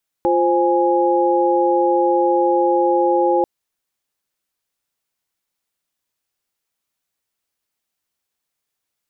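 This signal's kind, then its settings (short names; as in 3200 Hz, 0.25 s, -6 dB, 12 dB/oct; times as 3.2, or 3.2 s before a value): chord F4/C5/G#5 sine, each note -17.5 dBFS 3.19 s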